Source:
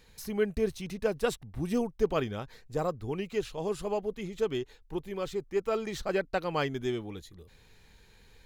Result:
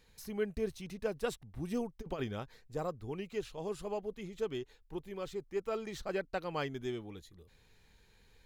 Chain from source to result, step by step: 2.01–2.44 s: compressor with a negative ratio -30 dBFS, ratio -0.5; trim -6.5 dB

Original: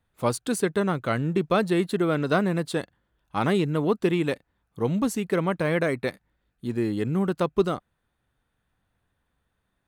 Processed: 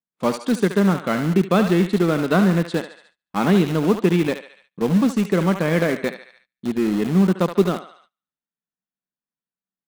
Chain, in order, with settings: low-pass 5.9 kHz 12 dB/octave; thinning echo 72 ms, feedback 61%, high-pass 690 Hz, level -6.5 dB; gate -54 dBFS, range -25 dB; resonant low shelf 130 Hz -12 dB, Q 3; in parallel at -10 dB: bit crusher 4-bit

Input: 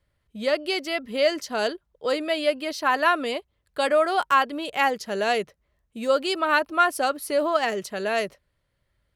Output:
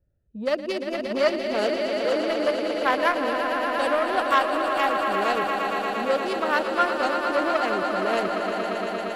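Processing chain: local Wiener filter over 41 samples; gain riding 2 s; echo with a slow build-up 116 ms, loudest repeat 5, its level -9 dB; transformer saturation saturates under 1.3 kHz

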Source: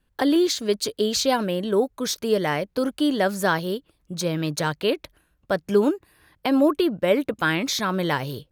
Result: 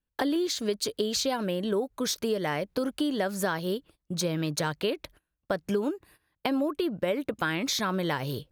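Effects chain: gate -49 dBFS, range -18 dB; compression, threshold -25 dBFS, peak gain reduction 11 dB

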